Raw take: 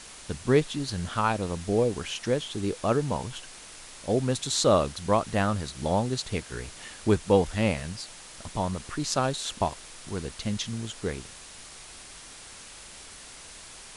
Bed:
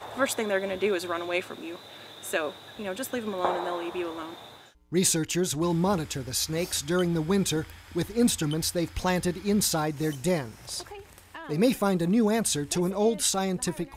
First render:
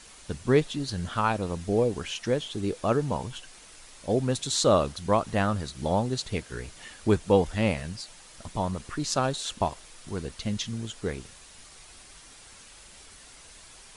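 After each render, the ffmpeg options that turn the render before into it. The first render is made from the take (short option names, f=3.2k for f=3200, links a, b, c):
-af "afftdn=nr=6:nf=-46"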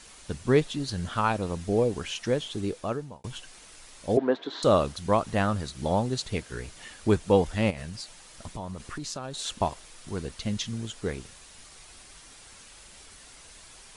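-filter_complex "[0:a]asettb=1/sr,asplit=3[a][b][c];[a]atrim=end=4.174[d];[b]atrim=start=4.17:end=4.63,asetpts=PTS-STARTPTS,afade=t=in:d=0.004:c=qsin,afade=t=out:st=0.456:d=0.004:c=qsin,highpass=f=240:w=0.5412,highpass=f=240:w=1.3066,equalizer=f=310:t=q:w=4:g=8,equalizer=f=440:t=q:w=4:g=8,equalizer=f=680:t=q:w=4:g=8,equalizer=f=1k:t=q:w=4:g=7,equalizer=f=1.6k:t=q:w=4:g=6,equalizer=f=2.6k:t=q:w=4:g=-7,lowpass=f=3.1k:w=0.5412,lowpass=f=3.1k:w=1.3066[e];[c]atrim=start=4.626[f];[d][e]acrossfade=d=0.004:c1=hsin:c2=qsin[g];[g][f]acrossfade=d=0.004:c1=qsin:c2=hsin,asettb=1/sr,asplit=3[h][i][j];[h]atrim=end=7.704[k];[i]atrim=start=7.7:end=9.39,asetpts=PTS-STARTPTS,afade=t=in:d=0.004:c=qsin,afade=t=out:st=1.686:d=0.004:c=qsin,acompressor=threshold=-32dB:ratio=6:attack=3.2:release=140:knee=1:detection=peak[l];[j]atrim=start=9.386[m];[k][l]acrossfade=d=0.004:c1=hsin:c2=qsin[n];[n][m]acrossfade=d=0.004:c1=qsin:c2=hsin,asplit=2[o][p];[o]atrim=end=3.24,asetpts=PTS-STARTPTS,afade=t=out:st=2.58:d=0.66[q];[p]atrim=start=3.24,asetpts=PTS-STARTPTS,afade=t=in:d=0.004:c=hsin[r];[q][r]concat=n=2:v=0:a=1"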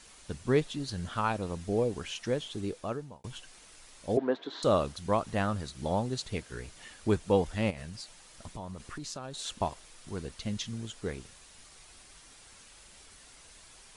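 -af "volume=-4.5dB"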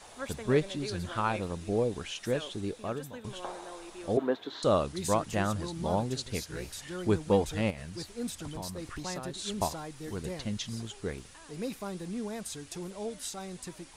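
-filter_complex "[1:a]volume=-13.5dB[a];[0:a][a]amix=inputs=2:normalize=0"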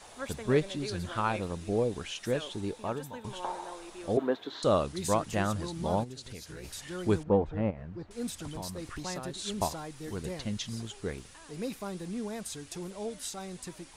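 -filter_complex "[0:a]asettb=1/sr,asplit=3[a][b][c];[a]atrim=end=2.504[d];[b]atrim=start=2.5:end=3.74,asetpts=PTS-STARTPTS,afade=t=in:d=0.004:c=qsin,afade=t=out:st=1.236:d=0.004:c=qsin,equalizer=f=900:w=7:g=12[e];[c]atrim=start=3.736[f];[d][e]acrossfade=d=0.004:c1=hsin:c2=qsin[g];[g][f]acrossfade=d=0.004:c1=qsin:c2=hsin,asplit=3[h][i][j];[h]afade=t=out:st=6.03:d=0.02[k];[i]acompressor=threshold=-40dB:ratio=5:attack=3.2:release=140:knee=1:detection=peak,afade=t=in:st=6.03:d=0.02,afade=t=out:st=6.63:d=0.02[l];[j]afade=t=in:st=6.63:d=0.02[m];[k][l][m]amix=inputs=3:normalize=0,asettb=1/sr,asplit=3[n][o][p];[n]atrim=end=7.234[q];[o]atrim=start=7.23:end=8.11,asetpts=PTS-STARTPTS,afade=t=in:d=0.004:c=qsin,afade=t=out:st=0.876:d=0.004:c=qsin,lowpass=1.2k[r];[p]atrim=start=8.106[s];[q][r]acrossfade=d=0.004:c1=hsin:c2=qsin[t];[t][s]acrossfade=d=0.004:c1=qsin:c2=hsin"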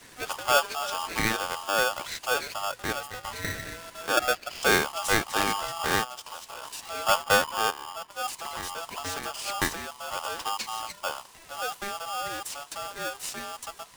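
-filter_complex "[0:a]asplit=2[a][b];[b]acrusher=bits=6:mix=0:aa=0.000001,volume=-7dB[c];[a][c]amix=inputs=2:normalize=0,aeval=exprs='val(0)*sgn(sin(2*PI*1000*n/s))':c=same"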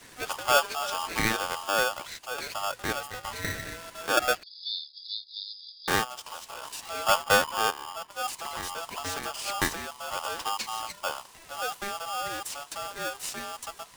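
-filter_complex "[0:a]asettb=1/sr,asplit=3[a][b][c];[a]atrim=end=4.434[d];[b]atrim=start=4.43:end=5.88,asetpts=PTS-STARTPTS,afade=t=in:d=0.004:c=qsin,afade=t=out:st=1.446:d=0.004:c=qsin,asuperpass=centerf=4200:order=20:qfactor=2.6[e];[c]atrim=start=5.876[f];[d][e]acrossfade=d=0.004:c1=hsin:c2=qsin[g];[g][f]acrossfade=d=0.004:c1=qsin:c2=hsin,asplit=2[h][i];[h]atrim=end=2.38,asetpts=PTS-STARTPTS,afade=t=out:st=1.72:d=0.66:silence=0.298538[j];[i]atrim=start=2.38,asetpts=PTS-STARTPTS,afade=t=in:d=0.004:c=hsin:silence=0.298538[k];[j][k]concat=n=2:v=0:a=1"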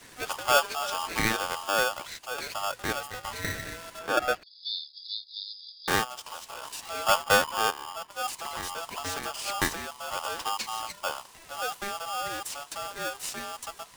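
-filter_complex "[0:a]asettb=1/sr,asplit=3[a][b][c];[a]atrim=end=3.994[d];[b]atrim=start=3.99:end=4.65,asetpts=PTS-STARTPTS,afade=t=in:d=0.004:c=qsin,afade=t=out:st=0.656:d=0.004:c=qsin,highshelf=f=3k:g=-8.5[e];[c]atrim=start=4.646[f];[d][e]acrossfade=d=0.004:c1=hsin:c2=qsin[g];[g][f]acrossfade=d=0.004:c1=qsin:c2=hsin"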